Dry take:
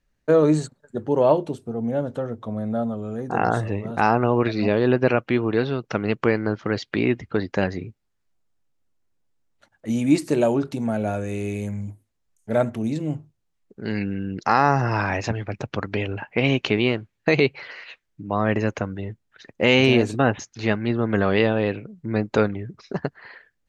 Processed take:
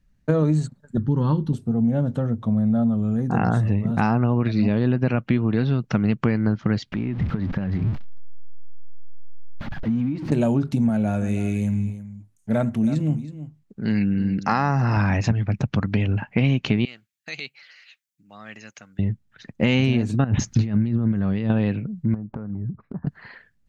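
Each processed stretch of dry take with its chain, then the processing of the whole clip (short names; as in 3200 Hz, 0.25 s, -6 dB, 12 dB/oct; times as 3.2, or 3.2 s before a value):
0.97–1.53 low shelf 82 Hz +10.5 dB + fixed phaser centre 2400 Hz, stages 6
6.92–10.32 zero-crossing step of -28.5 dBFS + compressor 12:1, threshold -27 dBFS + air absorption 300 m
10.89–14.97 low shelf 180 Hz -7 dB + echo 0.322 s -14.5 dB
16.85–18.99 differentiator + notch 1000 Hz, Q 6.6
20.24–21.5 low shelf 490 Hz +9 dB + negative-ratio compressor -27 dBFS + mismatched tape noise reduction encoder only
22.14–23.07 LPF 1300 Hz 24 dB/oct + compressor 16:1, threshold -33 dBFS
whole clip: resonant low shelf 280 Hz +9.5 dB, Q 1.5; compressor, threshold -16 dBFS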